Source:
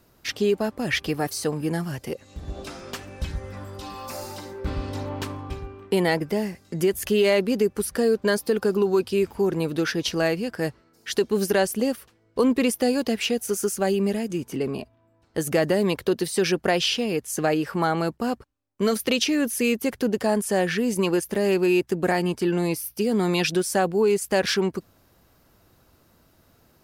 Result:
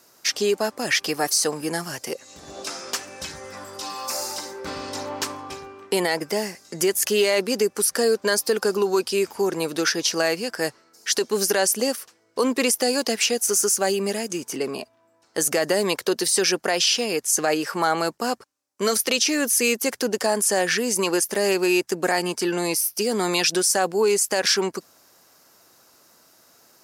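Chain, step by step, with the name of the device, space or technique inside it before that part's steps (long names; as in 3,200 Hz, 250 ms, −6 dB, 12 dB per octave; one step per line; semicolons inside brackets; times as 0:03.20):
meter weighting curve A
over-bright horn tweeter (high shelf with overshoot 4,400 Hz +7 dB, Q 1.5; brickwall limiter −14.5 dBFS, peak gain reduction 8.5 dB)
level +5 dB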